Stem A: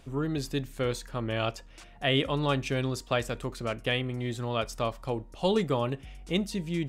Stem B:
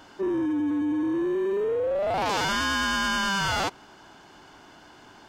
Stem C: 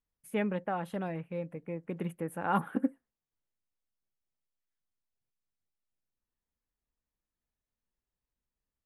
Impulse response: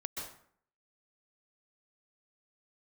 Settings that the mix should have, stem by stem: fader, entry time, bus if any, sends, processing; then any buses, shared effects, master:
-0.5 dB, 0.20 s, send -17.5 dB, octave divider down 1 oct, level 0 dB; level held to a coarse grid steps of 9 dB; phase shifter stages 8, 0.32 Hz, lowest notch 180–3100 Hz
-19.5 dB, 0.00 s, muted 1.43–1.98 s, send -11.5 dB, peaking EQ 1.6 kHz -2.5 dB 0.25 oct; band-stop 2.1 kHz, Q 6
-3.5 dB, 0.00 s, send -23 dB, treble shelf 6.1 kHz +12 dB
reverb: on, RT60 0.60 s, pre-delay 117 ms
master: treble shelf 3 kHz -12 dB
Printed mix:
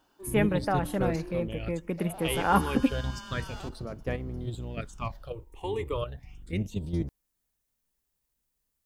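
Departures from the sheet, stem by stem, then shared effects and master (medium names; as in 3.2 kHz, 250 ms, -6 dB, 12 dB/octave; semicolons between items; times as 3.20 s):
stem A: send off; stem C -3.5 dB -> +5.0 dB; master: missing treble shelf 3 kHz -12 dB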